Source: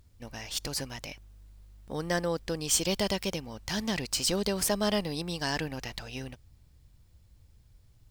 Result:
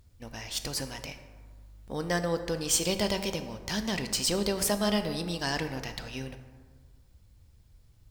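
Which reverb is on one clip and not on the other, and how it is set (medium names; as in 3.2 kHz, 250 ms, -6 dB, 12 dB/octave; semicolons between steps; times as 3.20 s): plate-style reverb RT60 1.6 s, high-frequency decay 0.45×, DRR 7.5 dB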